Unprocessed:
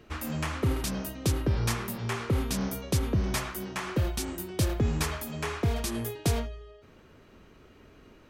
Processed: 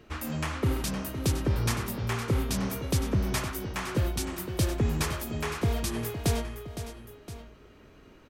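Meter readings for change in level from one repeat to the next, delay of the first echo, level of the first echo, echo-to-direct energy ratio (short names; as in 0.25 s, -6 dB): -5.0 dB, 0.512 s, -11.0 dB, -9.5 dB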